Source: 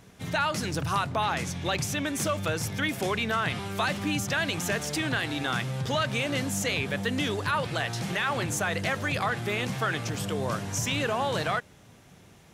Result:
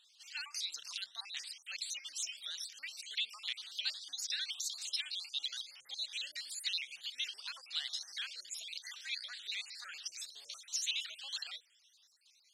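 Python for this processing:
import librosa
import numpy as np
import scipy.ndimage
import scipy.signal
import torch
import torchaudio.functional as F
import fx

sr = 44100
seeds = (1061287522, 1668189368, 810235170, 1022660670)

y = fx.spec_dropout(x, sr, seeds[0], share_pct=57)
y = fx.ladder_bandpass(y, sr, hz=4700.0, resonance_pct=50)
y = fx.vibrato_shape(y, sr, shape='saw_up', rate_hz=6.6, depth_cents=160.0)
y = F.gain(torch.from_numpy(y), 9.0).numpy()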